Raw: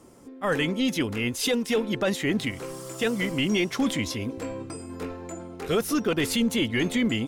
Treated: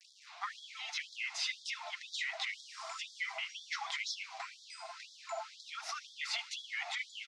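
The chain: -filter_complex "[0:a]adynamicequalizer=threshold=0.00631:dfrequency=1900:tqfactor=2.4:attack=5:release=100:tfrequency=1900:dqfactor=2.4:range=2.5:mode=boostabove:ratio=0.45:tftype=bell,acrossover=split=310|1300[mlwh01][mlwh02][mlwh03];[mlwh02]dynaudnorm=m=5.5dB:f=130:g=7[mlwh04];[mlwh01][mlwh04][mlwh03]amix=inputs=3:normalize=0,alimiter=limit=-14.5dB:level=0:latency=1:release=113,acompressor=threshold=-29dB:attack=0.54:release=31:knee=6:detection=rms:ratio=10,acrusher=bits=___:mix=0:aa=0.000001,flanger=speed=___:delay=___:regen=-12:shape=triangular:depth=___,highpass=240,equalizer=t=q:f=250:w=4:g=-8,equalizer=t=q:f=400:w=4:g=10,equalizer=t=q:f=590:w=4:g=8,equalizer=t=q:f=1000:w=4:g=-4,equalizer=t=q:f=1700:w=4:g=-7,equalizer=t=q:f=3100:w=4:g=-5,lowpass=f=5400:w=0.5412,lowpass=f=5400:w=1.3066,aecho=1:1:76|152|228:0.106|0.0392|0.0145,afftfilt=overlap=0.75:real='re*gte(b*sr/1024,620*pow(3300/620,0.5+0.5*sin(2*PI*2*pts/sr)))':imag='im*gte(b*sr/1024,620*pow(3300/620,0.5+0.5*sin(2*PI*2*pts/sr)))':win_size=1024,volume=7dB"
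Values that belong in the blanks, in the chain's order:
7, 1.7, 2.7, 4.5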